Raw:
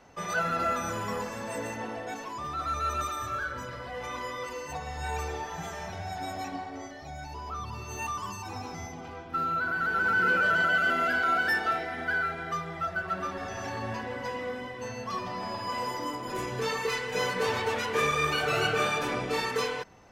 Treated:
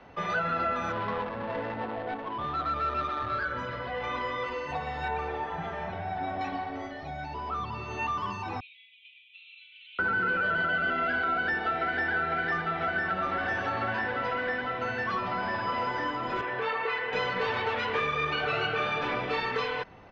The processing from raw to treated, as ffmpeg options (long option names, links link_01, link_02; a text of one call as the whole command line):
ffmpeg -i in.wav -filter_complex "[0:a]asettb=1/sr,asplit=3[link_01][link_02][link_03];[link_01]atrim=end=0.924[link_04];[link_02]atrim=start=0.92:end=3.45,asetpts=PTS-STARTPTS,afade=type=in:duration=0.004:curve=qsin,afade=type=out:start_time=2.526:duration=0.004:curve=qsin,adynamicsmooth=sensitivity=5:basefreq=580[link_05];[link_03]atrim=start=3.446[link_06];[link_04][link_05]acrossfade=duration=0.004:curve1=hsin:curve2=qsin[link_07];[link_07][link_06]acrossfade=duration=0.004:curve1=qsin:curve2=hsin,asettb=1/sr,asplit=3[link_08][link_09][link_10];[link_08]atrim=end=5.084[link_11];[link_09]atrim=start=5.08:end=6.41,asetpts=PTS-STARTPTS,afade=type=in:duration=0.004:curve=qsin,afade=type=out:start_time=1.326:duration=0.004:curve=qsin,lowpass=frequency=1900:poles=1[link_12];[link_10]atrim=start=6.406[link_13];[link_11][link_12]acrossfade=duration=0.004:curve1=hsin:curve2=qsin[link_14];[link_14][link_13]acrossfade=duration=0.004:curve1=qsin:curve2=hsin,asettb=1/sr,asplit=3[link_15][link_16][link_17];[link_15]atrim=end=8.604[link_18];[link_16]atrim=start=8.6:end=9.99,asetpts=PTS-STARTPTS,afade=type=in:duration=0.004:curve=qsin,afade=type=out:start_time=1.386:duration=0.004:curve=qsin,asuperpass=centerf=3000:order=12:qfactor=1.9[link_19];[link_17]atrim=start=9.986[link_20];[link_18][link_19]acrossfade=duration=0.004:curve1=hsin:curve2=qsin[link_21];[link_21][link_20]acrossfade=duration=0.004:curve1=qsin:curve2=hsin,asplit=2[link_22][link_23];[link_23]afade=type=in:start_time=11.31:duration=0.01,afade=type=out:start_time=12.11:duration=0.01,aecho=0:1:500|1000|1500|2000|2500|3000|3500|4000|4500|5000|5500|6000:0.630957|0.536314|0.455867|0.387487|0.329364|0.279959|0.237965|0.20227|0.17193|0.14614|0.124219|0.105586[link_24];[link_22][link_24]amix=inputs=2:normalize=0,asettb=1/sr,asplit=3[link_25][link_26][link_27];[link_25]atrim=end=16.414[link_28];[link_26]atrim=start=16.41:end=17.13,asetpts=PTS-STARTPTS,afade=type=in:duration=0.004:curve=qsin,afade=type=out:start_time=0.716:duration=0.004:curve=qsin,acrossover=split=370 3200:gain=0.224 1 0.178[link_29][link_30][link_31];[link_29][link_30][link_31]amix=inputs=3:normalize=0[link_32];[link_27]atrim=start=17.126[link_33];[link_28][link_32]acrossfade=duration=0.004:curve1=hsin:curve2=qsin[link_34];[link_34][link_33]acrossfade=duration=0.004:curve1=qsin:curve2=hsin,acrossover=split=110|560[link_35][link_36][link_37];[link_35]acompressor=threshold=-53dB:ratio=4[link_38];[link_36]acompressor=threshold=-42dB:ratio=4[link_39];[link_37]acompressor=threshold=-32dB:ratio=4[link_40];[link_38][link_39][link_40]amix=inputs=3:normalize=0,lowpass=frequency=3800:width=0.5412,lowpass=frequency=3800:width=1.3066,volume=4.5dB" out.wav